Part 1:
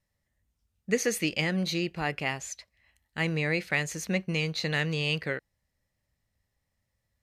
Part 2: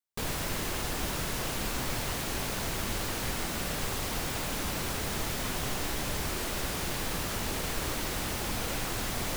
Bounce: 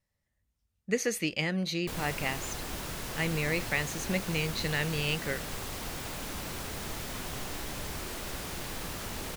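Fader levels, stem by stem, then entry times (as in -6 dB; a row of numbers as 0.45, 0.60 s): -2.5, -5.0 dB; 0.00, 1.70 s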